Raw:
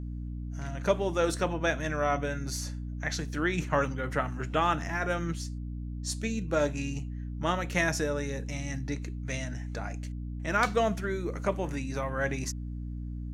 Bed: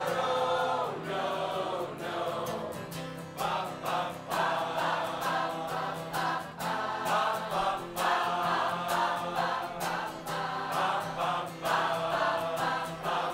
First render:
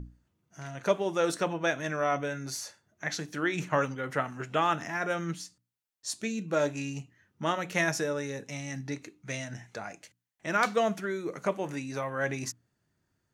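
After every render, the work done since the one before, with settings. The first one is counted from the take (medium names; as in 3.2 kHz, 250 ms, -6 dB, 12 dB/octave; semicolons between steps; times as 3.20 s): hum notches 60/120/180/240/300 Hz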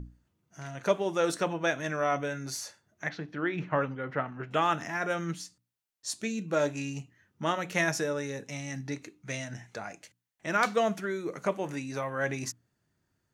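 3.09–4.51 s: distance through air 330 m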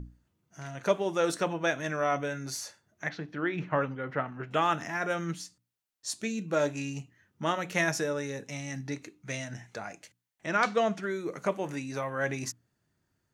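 10.46–11.03 s: low-pass 6.5 kHz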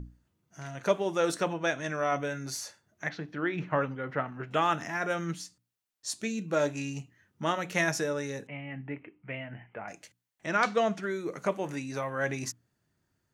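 1.54–2.12 s: elliptic low-pass 10 kHz; 8.47–9.88 s: rippled Chebyshev low-pass 3.1 kHz, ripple 3 dB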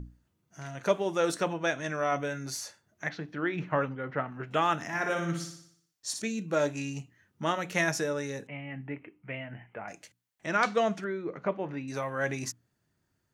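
3.89–4.31 s: distance through air 110 m; 4.86–6.22 s: flutter echo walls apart 10.2 m, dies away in 0.65 s; 11.04–11.88 s: distance through air 330 m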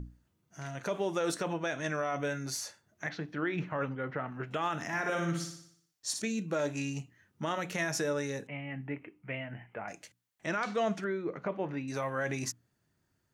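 peak limiter -22.5 dBFS, peak gain reduction 10.5 dB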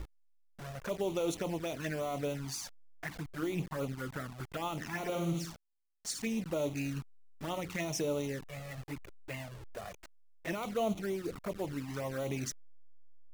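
send-on-delta sampling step -39 dBFS; touch-sensitive flanger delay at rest 6.1 ms, full sweep at -29.5 dBFS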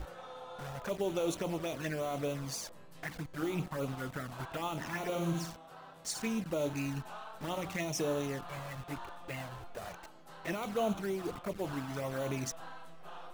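add bed -18.5 dB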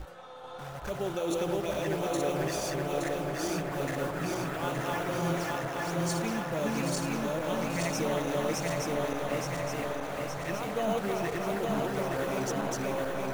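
backward echo that repeats 435 ms, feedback 77%, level 0 dB; feedback echo behind a band-pass 313 ms, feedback 78%, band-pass 990 Hz, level -5 dB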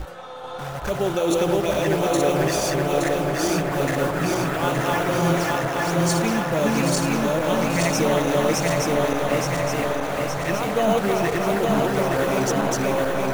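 trim +10 dB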